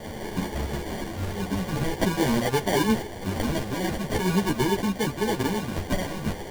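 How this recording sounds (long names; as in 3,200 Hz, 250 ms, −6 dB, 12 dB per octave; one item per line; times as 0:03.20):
a quantiser's noise floor 6 bits, dither triangular
phaser sweep stages 4, 0.46 Hz, lowest notch 400–1,600 Hz
aliases and images of a low sample rate 1,300 Hz, jitter 0%
a shimmering, thickened sound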